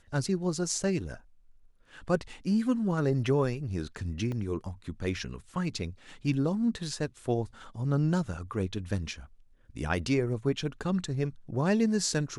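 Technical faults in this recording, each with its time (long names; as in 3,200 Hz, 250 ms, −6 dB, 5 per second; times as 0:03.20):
0:04.32: drop-out 2.1 ms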